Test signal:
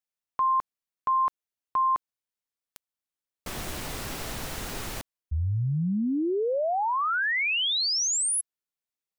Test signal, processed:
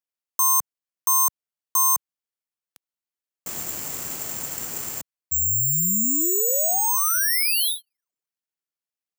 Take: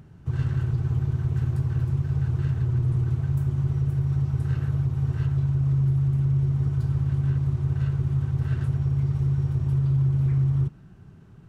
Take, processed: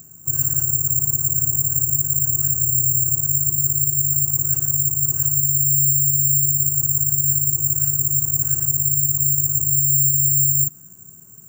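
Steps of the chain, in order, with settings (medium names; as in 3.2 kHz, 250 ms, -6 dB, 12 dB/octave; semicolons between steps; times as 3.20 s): careless resampling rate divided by 6×, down filtered, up zero stuff; high-pass 110 Hz 12 dB/octave; trim -3 dB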